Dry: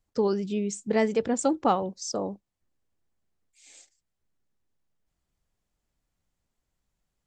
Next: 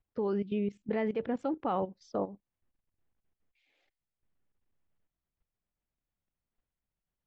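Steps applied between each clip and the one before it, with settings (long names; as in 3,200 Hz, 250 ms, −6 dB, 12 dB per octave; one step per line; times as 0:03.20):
low-pass filter 3,100 Hz 24 dB per octave
output level in coarse steps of 15 dB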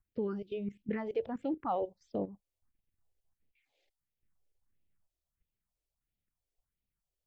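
all-pass phaser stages 4, 1.5 Hz, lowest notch 190–1,300 Hz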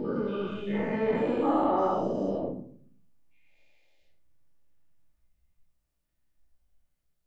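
every bin's largest magnitude spread in time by 480 ms
rectangular room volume 610 cubic metres, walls furnished, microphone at 2.6 metres
level −4 dB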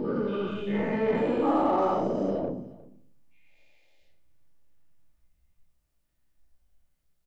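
in parallel at −7.5 dB: soft clipping −32.5 dBFS, distortion −7 dB
on the sum: single-tap delay 356 ms −21 dB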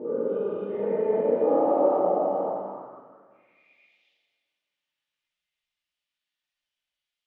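dense smooth reverb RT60 2.3 s, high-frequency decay 0.65×, DRR −6 dB
band-pass filter sweep 510 Hz → 3,100 Hz, 0:02.01–0:04.14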